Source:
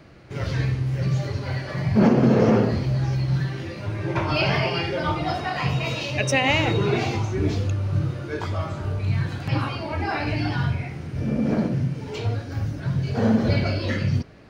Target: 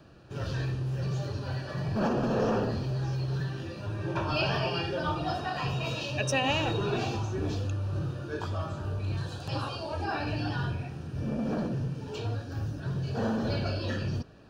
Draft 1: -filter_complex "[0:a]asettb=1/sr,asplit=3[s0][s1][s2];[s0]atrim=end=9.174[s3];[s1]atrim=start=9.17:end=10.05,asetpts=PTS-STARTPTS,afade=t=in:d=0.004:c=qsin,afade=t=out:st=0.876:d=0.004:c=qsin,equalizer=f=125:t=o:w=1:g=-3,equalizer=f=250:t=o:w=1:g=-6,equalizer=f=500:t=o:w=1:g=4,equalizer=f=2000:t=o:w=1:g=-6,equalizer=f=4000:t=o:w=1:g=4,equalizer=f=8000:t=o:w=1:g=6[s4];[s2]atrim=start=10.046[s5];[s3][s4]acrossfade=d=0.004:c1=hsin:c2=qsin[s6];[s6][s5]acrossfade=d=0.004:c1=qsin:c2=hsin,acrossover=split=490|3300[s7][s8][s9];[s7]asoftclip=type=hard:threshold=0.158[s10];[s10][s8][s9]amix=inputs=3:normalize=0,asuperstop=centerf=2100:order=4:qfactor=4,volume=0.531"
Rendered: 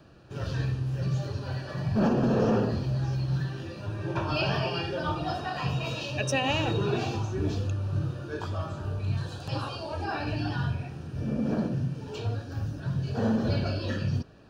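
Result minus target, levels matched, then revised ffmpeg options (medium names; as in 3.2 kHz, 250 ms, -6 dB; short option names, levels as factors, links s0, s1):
hard clipper: distortion -8 dB
-filter_complex "[0:a]asettb=1/sr,asplit=3[s0][s1][s2];[s0]atrim=end=9.174[s3];[s1]atrim=start=9.17:end=10.05,asetpts=PTS-STARTPTS,afade=t=in:d=0.004:c=qsin,afade=t=out:st=0.876:d=0.004:c=qsin,equalizer=f=125:t=o:w=1:g=-3,equalizer=f=250:t=o:w=1:g=-6,equalizer=f=500:t=o:w=1:g=4,equalizer=f=2000:t=o:w=1:g=-6,equalizer=f=4000:t=o:w=1:g=4,equalizer=f=8000:t=o:w=1:g=6[s4];[s2]atrim=start=10.046[s5];[s3][s4]acrossfade=d=0.004:c1=hsin:c2=qsin[s6];[s6][s5]acrossfade=d=0.004:c1=qsin:c2=hsin,acrossover=split=490|3300[s7][s8][s9];[s7]asoftclip=type=hard:threshold=0.0708[s10];[s10][s8][s9]amix=inputs=3:normalize=0,asuperstop=centerf=2100:order=4:qfactor=4,volume=0.531"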